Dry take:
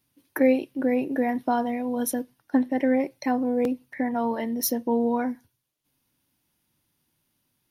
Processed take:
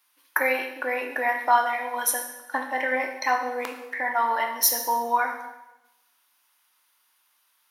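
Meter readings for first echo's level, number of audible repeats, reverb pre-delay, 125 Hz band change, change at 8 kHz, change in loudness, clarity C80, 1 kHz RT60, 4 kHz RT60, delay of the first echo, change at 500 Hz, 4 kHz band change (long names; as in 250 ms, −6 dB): no echo audible, no echo audible, 6 ms, below −20 dB, +7.5 dB, +0.5 dB, 9.0 dB, 0.90 s, 0.90 s, no echo audible, −4.5 dB, +8.0 dB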